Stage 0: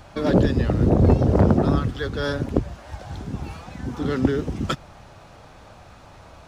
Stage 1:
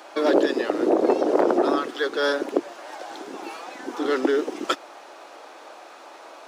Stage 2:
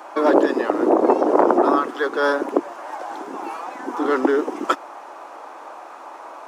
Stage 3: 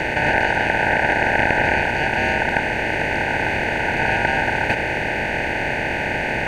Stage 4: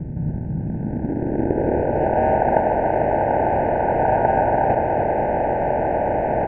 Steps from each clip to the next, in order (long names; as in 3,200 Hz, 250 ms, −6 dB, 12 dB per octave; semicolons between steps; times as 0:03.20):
Chebyshev high-pass filter 320 Hz, order 4; in parallel at −2 dB: brickwall limiter −18 dBFS, peak gain reduction 9.5 dB
octave-band graphic EQ 250/1,000/4,000 Hz +4/+10/−7 dB
compressor on every frequency bin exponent 0.2; ring modulation 1,200 Hz; level −5.5 dB
low-pass filter sweep 170 Hz → 700 Hz, 0:00.53–0:02.21; on a send: single-tap delay 293 ms −6 dB